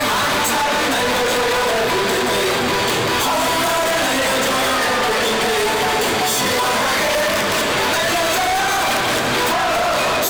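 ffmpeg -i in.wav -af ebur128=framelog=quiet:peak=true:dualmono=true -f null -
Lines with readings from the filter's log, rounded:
Integrated loudness:
  I:         -13.6 LUFS
  Threshold: -23.6 LUFS
Loudness range:
  LRA:         0.3 LU
  Threshold: -33.6 LUFS
  LRA low:   -13.7 LUFS
  LRA high:  -13.5 LUFS
True peak:
  Peak:      -11.5 dBFS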